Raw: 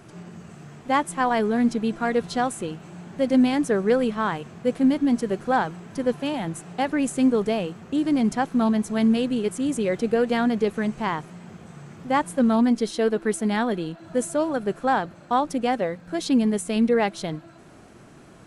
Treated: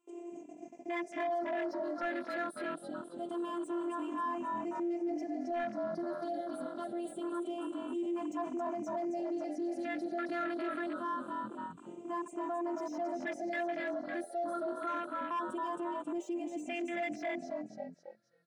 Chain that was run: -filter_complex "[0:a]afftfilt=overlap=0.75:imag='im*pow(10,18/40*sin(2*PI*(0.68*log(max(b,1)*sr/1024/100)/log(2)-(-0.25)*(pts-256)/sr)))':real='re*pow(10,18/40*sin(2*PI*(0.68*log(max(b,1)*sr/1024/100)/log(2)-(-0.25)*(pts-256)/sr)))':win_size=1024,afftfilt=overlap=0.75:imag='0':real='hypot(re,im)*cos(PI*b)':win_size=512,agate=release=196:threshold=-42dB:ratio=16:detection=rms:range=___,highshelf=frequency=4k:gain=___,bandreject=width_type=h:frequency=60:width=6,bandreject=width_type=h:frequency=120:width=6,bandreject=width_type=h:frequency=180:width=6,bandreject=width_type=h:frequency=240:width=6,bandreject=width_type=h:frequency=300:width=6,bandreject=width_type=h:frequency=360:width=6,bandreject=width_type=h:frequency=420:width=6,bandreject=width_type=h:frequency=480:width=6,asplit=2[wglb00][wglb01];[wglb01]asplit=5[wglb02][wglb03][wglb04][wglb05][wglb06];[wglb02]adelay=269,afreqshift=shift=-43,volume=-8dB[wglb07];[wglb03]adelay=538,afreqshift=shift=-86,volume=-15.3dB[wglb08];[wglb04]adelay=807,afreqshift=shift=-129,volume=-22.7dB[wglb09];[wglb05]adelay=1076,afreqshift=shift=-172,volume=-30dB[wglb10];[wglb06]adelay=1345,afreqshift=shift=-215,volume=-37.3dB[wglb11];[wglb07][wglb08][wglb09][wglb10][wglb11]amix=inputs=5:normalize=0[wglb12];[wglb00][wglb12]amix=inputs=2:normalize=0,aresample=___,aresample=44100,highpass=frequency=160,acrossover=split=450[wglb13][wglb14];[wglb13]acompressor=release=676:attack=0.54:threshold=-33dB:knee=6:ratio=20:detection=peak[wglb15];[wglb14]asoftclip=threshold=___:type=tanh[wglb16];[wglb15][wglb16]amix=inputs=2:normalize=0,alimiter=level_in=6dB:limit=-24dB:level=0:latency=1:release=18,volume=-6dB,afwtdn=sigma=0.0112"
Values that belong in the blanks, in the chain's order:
-15dB, 3.5, 22050, -25dB